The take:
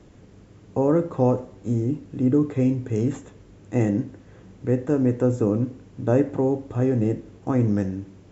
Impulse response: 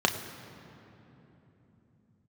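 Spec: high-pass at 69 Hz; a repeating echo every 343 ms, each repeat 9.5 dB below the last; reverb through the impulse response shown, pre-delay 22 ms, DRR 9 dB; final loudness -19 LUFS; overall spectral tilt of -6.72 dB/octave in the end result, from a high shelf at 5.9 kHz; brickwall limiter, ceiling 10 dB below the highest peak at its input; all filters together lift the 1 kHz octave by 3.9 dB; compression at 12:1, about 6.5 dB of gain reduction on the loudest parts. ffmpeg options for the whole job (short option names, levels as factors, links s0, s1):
-filter_complex "[0:a]highpass=69,equalizer=f=1000:t=o:g=5,highshelf=f=5900:g=5,acompressor=threshold=0.1:ratio=12,alimiter=limit=0.106:level=0:latency=1,aecho=1:1:343|686|1029|1372:0.335|0.111|0.0365|0.012,asplit=2[s0][s1];[1:a]atrim=start_sample=2205,adelay=22[s2];[s1][s2]afir=irnorm=-1:irlink=0,volume=0.0794[s3];[s0][s3]amix=inputs=2:normalize=0,volume=3.55"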